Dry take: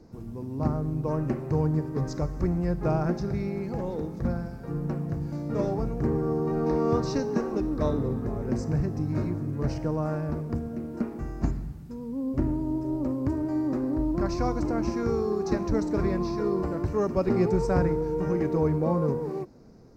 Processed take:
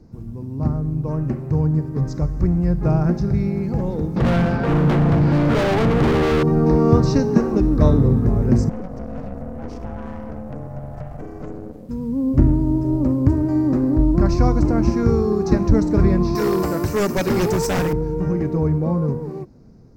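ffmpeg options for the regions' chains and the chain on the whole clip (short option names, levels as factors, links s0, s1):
-filter_complex "[0:a]asettb=1/sr,asplit=3[s0][s1][s2];[s0]atrim=end=4.164[s3];[s1]atrim=start=4.16:end=6.43,asetpts=PTS-STARTPTS,afade=t=in:d=0.004:c=qsin,afade=t=out:st=2.266:d=0.004:c=qsin,lowpass=f=4400:w=0.5412,lowpass=f=4400:w=1.3066,asplit=2[s4][s5];[s5]highpass=f=720:p=1,volume=25.1,asoftclip=type=tanh:threshold=0.211[s6];[s4][s6]amix=inputs=2:normalize=0,lowpass=f=3400:p=1,volume=0.501,asoftclip=type=hard:threshold=0.0596[s7];[s2]atrim=start=6.426[s8];[s3][s7]acrossfade=d=0.004:c1=hsin:c2=qsin[s9];[s9][s8]acrossfade=d=0.004:c1=qsin:c2=hsin,asettb=1/sr,asplit=3[s10][s11][s12];[s10]atrim=end=8.694[s13];[s11]atrim=start=8.69:end=11.89,asetpts=PTS-STARTPTS,afade=t=in:d=0.004:c=qsin,afade=t=out:st=3.196:d=0.004:c=qsin,acompressor=threshold=0.02:ratio=2:attack=3.2:release=140:knee=1:detection=peak,aeval=exprs='val(0)*sin(2*PI*370*n/s)':c=same,aeval=exprs='(tanh(56.2*val(0)+0.6)-tanh(0.6))/56.2':c=same[s14];[s12]atrim=start=11.886[s15];[s13][s14]acrossfade=d=0.004:c1=hsin:c2=qsin[s16];[s16][s15]acrossfade=d=0.004:c1=qsin:c2=hsin,asettb=1/sr,asplit=3[s17][s18][s19];[s17]atrim=end=16.354[s20];[s18]atrim=start=16.35:end=17.93,asetpts=PTS-STARTPTS,afade=t=in:d=0.004:c=qsin,afade=t=out:st=1.576:d=0.004:c=qsin,aemphasis=mode=production:type=riaa,acontrast=45,aeval=exprs='0.106*(abs(mod(val(0)/0.106+3,4)-2)-1)':c=same[s21];[s19]atrim=start=17.926[s22];[s20][s21]acrossfade=d=0.004:c1=hsin:c2=qsin[s23];[s23][s22]acrossfade=d=0.004:c1=qsin:c2=hsin,bass=f=250:g=9,treble=f=4000:g=0,dynaudnorm=f=470:g=13:m=3.76,volume=0.891"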